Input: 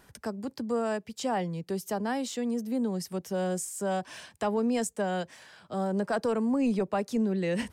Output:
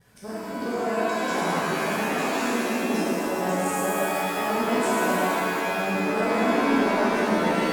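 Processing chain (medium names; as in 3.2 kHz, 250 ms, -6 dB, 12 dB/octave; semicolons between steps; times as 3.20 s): time reversed locally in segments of 109 ms; pitch-shifted reverb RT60 2.7 s, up +7 st, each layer -2 dB, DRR -10.5 dB; trim -7.5 dB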